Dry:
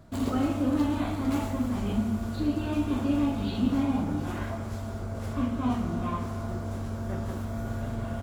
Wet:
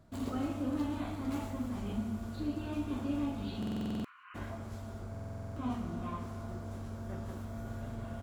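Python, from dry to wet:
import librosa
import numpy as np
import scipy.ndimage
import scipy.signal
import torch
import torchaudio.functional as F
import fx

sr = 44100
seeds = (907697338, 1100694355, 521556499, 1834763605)

y = fx.brickwall_bandpass(x, sr, low_hz=990.0, high_hz=3100.0, at=(3.81, 4.34), fade=0.02)
y = fx.echo_wet_highpass(y, sr, ms=142, feedback_pct=58, hz=2400.0, wet_db=-18.0)
y = fx.buffer_glitch(y, sr, at_s=(3.58, 5.1), block=2048, repeats=9)
y = y * 10.0 ** (-8.5 / 20.0)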